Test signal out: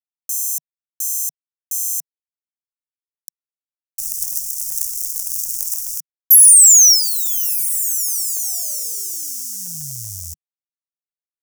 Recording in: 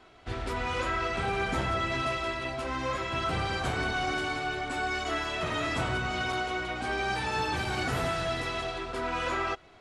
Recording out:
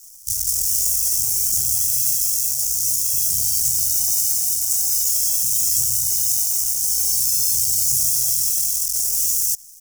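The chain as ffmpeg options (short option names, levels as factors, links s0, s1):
-af "acrusher=bits=7:dc=4:mix=0:aa=0.000001,aexciter=amount=8.1:drive=7.8:freq=3500,firequalizer=gain_entry='entry(150,0);entry(220,-19);entry(690,-12);entry(1000,-30);entry(2500,-13);entry(3900,-20);entry(5600,6)':delay=0.05:min_phase=1,volume=0.631"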